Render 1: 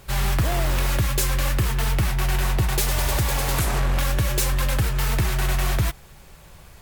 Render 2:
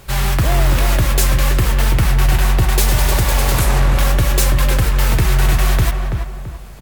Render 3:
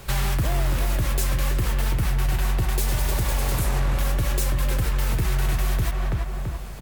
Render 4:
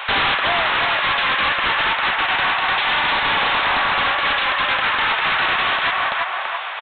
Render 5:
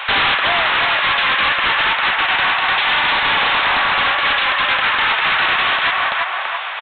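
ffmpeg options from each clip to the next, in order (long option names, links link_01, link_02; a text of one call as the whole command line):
ffmpeg -i in.wav -filter_complex "[0:a]asplit=2[link_01][link_02];[link_02]adelay=333,lowpass=frequency=1500:poles=1,volume=-4.5dB,asplit=2[link_03][link_04];[link_04]adelay=333,lowpass=frequency=1500:poles=1,volume=0.4,asplit=2[link_05][link_06];[link_06]adelay=333,lowpass=frequency=1500:poles=1,volume=0.4,asplit=2[link_07][link_08];[link_08]adelay=333,lowpass=frequency=1500:poles=1,volume=0.4,asplit=2[link_09][link_10];[link_10]adelay=333,lowpass=frequency=1500:poles=1,volume=0.4[link_11];[link_01][link_03][link_05][link_07][link_09][link_11]amix=inputs=6:normalize=0,volume=5.5dB" out.wav
ffmpeg -i in.wav -filter_complex "[0:a]acrossover=split=510|7900[link_01][link_02][link_03];[link_02]alimiter=limit=-16dB:level=0:latency=1:release=65[link_04];[link_01][link_04][link_03]amix=inputs=3:normalize=0,acompressor=threshold=-22dB:ratio=3" out.wav
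ffmpeg -i in.wav -af "highpass=frequency=850:width=0.5412,highpass=frequency=850:width=1.3066,aresample=8000,aeval=exprs='0.0891*sin(PI/2*3.55*val(0)/0.0891)':channel_layout=same,aresample=44100,volume=6.5dB" out.wav
ffmpeg -i in.wav -af "equalizer=frequency=2600:width_type=o:width=2.6:gain=3.5" out.wav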